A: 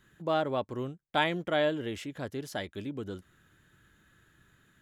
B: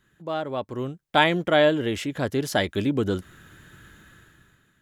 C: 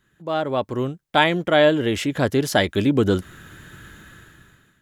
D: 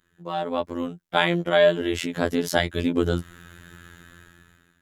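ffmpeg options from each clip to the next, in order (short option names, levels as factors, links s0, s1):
-af "dynaudnorm=f=230:g=7:m=6.31,volume=0.841"
-af "dynaudnorm=f=120:g=5:m=2.11"
-af "afftfilt=real='hypot(re,im)*cos(PI*b)':imag='0':win_size=2048:overlap=0.75"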